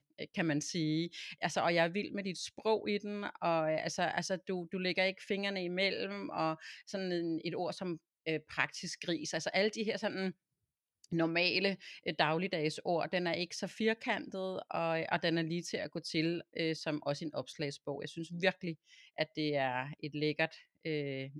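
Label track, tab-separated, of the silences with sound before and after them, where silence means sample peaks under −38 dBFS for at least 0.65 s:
10.310000	11.130000	silence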